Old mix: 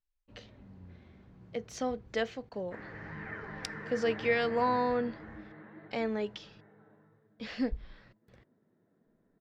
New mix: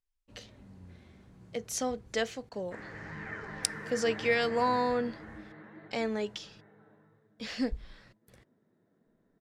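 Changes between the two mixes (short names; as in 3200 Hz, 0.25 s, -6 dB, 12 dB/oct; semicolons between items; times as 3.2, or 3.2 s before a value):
speech: add LPF 8300 Hz 12 dB/oct; master: remove air absorption 180 m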